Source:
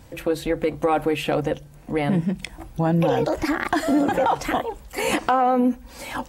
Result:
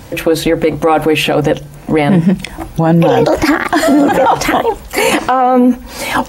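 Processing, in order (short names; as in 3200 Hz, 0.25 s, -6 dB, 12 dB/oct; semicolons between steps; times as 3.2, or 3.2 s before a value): low shelf 76 Hz -7.5 dB; notch 7800 Hz, Q 18; maximiser +17 dB; gain -1 dB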